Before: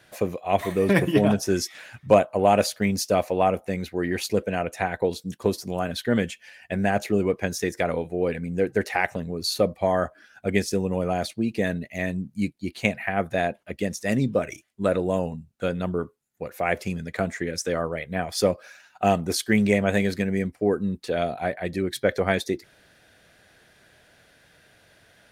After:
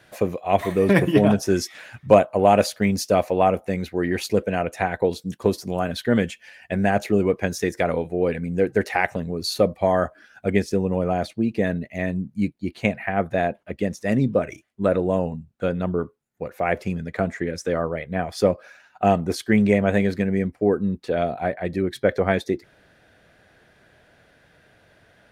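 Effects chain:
high-shelf EQ 3,000 Hz −4.5 dB, from 0:10.53 −11.5 dB
level +3 dB

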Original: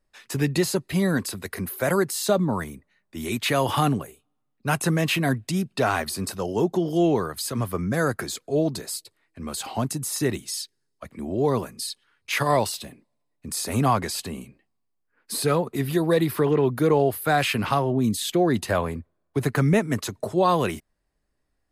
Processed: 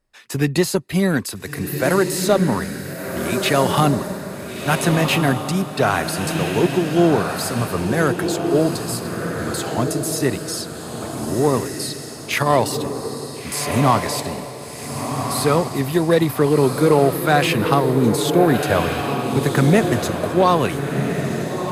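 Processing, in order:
harmonic generator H 6 −34 dB, 7 −29 dB, 8 −37 dB, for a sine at −8 dBFS
feedback delay with all-pass diffusion 1,429 ms, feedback 41%, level −5 dB
level +5 dB

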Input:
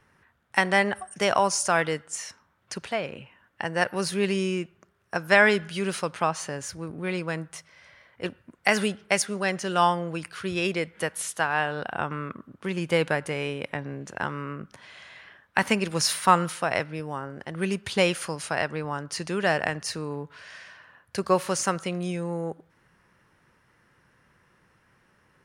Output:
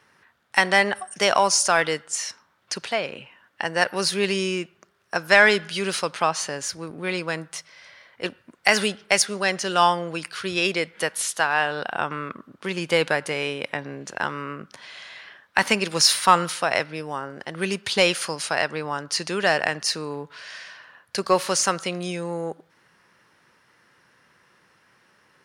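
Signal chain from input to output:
high-pass filter 300 Hz 6 dB per octave
parametric band 4,500 Hz +6 dB 1.1 octaves
in parallel at −4.5 dB: soft clipping −12.5 dBFS, distortion −14 dB

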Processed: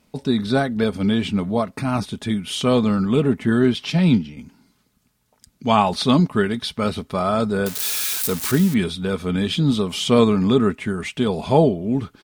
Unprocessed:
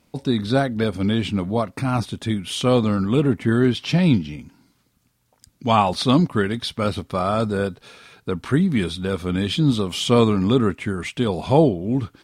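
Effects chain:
0:07.66–0:08.74: spike at every zero crossing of −15 dBFS
comb filter 4.7 ms, depth 34%
0:03.90–0:04.37: multiband upward and downward expander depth 100%

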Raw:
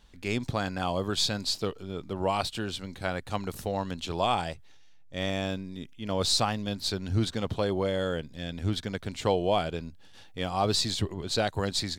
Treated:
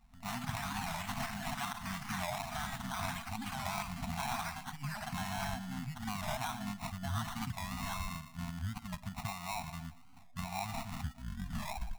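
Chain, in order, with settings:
turntable brake at the end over 1.20 s
noise reduction from a noise print of the clip's start 9 dB
downward compressor 6 to 1, threshold −40 dBFS, peak gain reduction 18 dB
on a send: delay with a band-pass on its return 118 ms, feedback 44%, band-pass 490 Hz, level −11 dB
on the sum: sample-rate reduction 1,600 Hz, jitter 0%
delay with pitch and tempo change per echo 113 ms, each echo +7 semitones, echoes 3
brick-wall band-stop 260–650 Hz
wow of a warped record 45 rpm, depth 160 cents
level +4 dB

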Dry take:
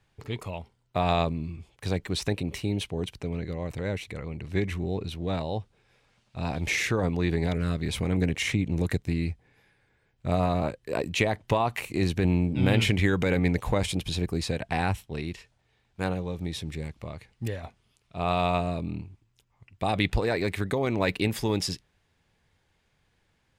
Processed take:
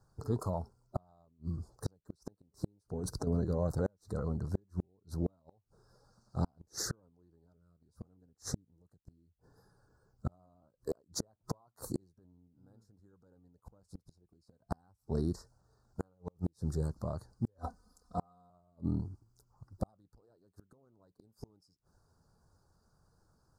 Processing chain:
spectral magnitudes quantised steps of 15 dB
elliptic band-stop filter 1,400–4,700 Hz, stop band 50 dB
0:02.86–0:03.27: compressor whose output falls as the input rises −37 dBFS, ratio −1
0:17.58–0:18.50: comb filter 4 ms, depth 96%
gate with flip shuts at −23 dBFS, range −41 dB
level +1.5 dB

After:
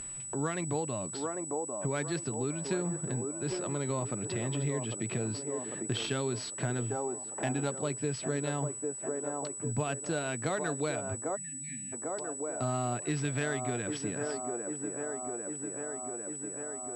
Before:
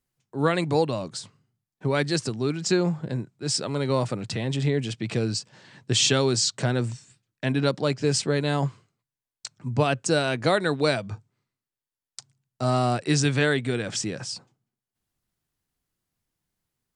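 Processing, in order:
notch filter 510 Hz, Q 12
on a send: delay with a band-pass on its return 799 ms, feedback 48%, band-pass 580 Hz, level −5 dB
on the sum: upward compression, threshold −36 dBFS
0:06.91–0:07.70: parametric band 790 Hz +12.5 dB 0.25 octaves
0:11.36–0:11.93: time-frequency box erased 260–1,700 Hz
downward compressor 2.5 to 1, threshold −38 dBFS, peak gain reduction 14.5 dB
switching amplifier with a slow clock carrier 7,900 Hz
level +2.5 dB

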